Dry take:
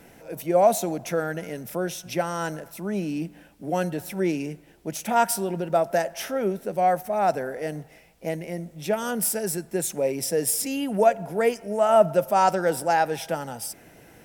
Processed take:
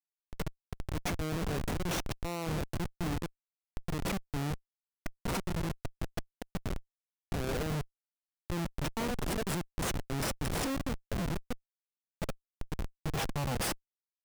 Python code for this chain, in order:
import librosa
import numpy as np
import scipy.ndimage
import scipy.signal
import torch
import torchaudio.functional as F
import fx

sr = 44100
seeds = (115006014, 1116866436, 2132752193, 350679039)

y = fx.over_compress(x, sr, threshold_db=-32.0, ratio=-1.0)
y = fx.auto_swell(y, sr, attack_ms=203.0)
y = fx.schmitt(y, sr, flips_db=-26.5)